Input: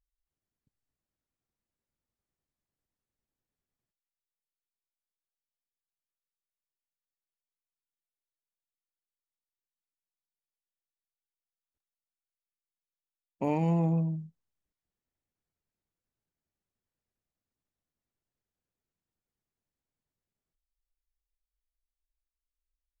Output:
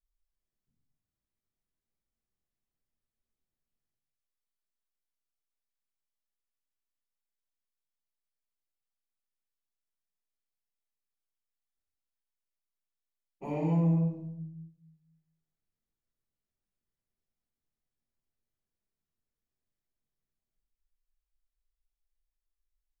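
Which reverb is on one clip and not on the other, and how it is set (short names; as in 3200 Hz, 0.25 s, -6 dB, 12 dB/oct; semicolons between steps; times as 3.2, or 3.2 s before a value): shoebox room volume 170 m³, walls mixed, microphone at 3.9 m; gain -16.5 dB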